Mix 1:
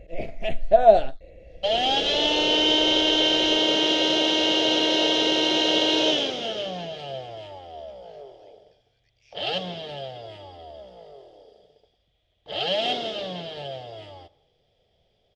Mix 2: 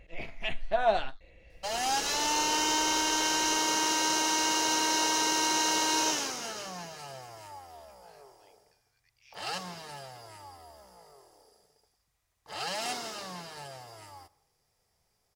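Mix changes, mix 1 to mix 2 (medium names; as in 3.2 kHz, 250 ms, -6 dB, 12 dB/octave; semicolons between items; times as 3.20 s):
second sound: remove resonant low-pass 3.3 kHz, resonance Q 11; master: add resonant low shelf 790 Hz -8.5 dB, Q 3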